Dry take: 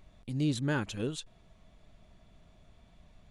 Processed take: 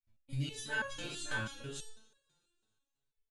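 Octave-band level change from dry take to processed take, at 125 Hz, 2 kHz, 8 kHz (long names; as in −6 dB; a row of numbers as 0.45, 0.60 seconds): −6.5, +4.0, +1.0 decibels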